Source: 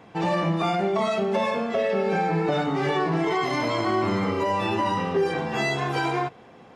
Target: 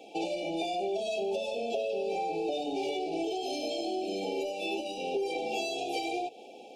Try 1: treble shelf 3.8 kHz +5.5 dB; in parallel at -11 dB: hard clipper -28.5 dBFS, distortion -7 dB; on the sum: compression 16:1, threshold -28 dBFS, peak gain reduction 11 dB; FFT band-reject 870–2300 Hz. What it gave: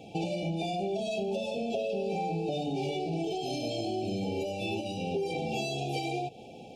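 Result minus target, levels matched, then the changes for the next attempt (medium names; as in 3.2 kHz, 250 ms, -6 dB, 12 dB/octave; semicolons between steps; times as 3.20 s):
250 Hz band +2.5 dB
add first: high-pass 300 Hz 24 dB/octave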